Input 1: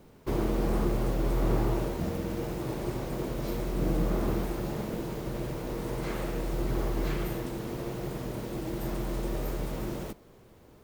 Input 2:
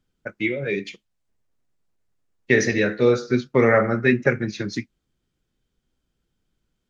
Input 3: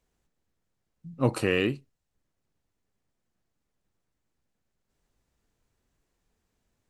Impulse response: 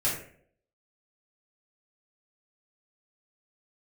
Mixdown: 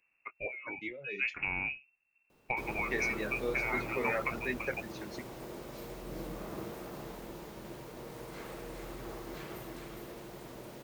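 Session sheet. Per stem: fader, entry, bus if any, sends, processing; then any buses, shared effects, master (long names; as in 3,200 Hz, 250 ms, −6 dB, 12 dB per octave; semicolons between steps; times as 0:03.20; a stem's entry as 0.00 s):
−8.0 dB, 2.30 s, no bus, no send, echo send −4.5 dB, low-shelf EQ 330 Hz −9.5 dB
−9.0 dB, 0.00 s, bus A, no send, echo send −6 dB, high-pass filter 360 Hz 6 dB per octave; reverb reduction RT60 0.87 s; automatic ducking −8 dB, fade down 1.00 s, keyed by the third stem
0.0 dB, 0.00 s, bus A, no send, no echo send, no processing
bus A: 0.0 dB, voice inversion scrambler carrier 2,700 Hz; downward compressor 6 to 1, threshold −31 dBFS, peak gain reduction 13 dB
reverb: not used
echo: single-tap delay 411 ms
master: no processing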